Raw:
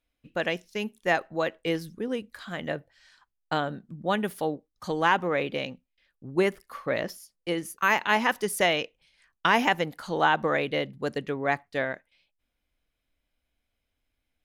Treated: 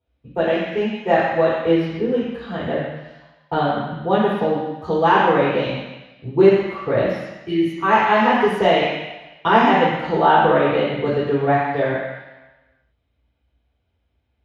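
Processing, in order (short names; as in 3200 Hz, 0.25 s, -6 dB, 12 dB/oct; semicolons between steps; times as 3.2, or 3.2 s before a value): 4.9–6.46 bell 5200 Hz +6 dB 1 oct; 7.27–7.6 spectral delete 440–1700 Hz; reverb RT60 1.1 s, pre-delay 3 ms, DRR -8 dB; gain -12.5 dB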